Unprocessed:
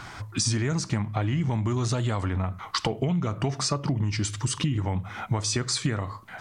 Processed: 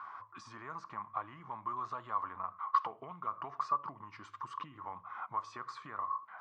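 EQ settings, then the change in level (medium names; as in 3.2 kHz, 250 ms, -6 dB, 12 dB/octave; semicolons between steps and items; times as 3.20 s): band-pass filter 1.1 kHz, Q 11; distance through air 71 m; +7.0 dB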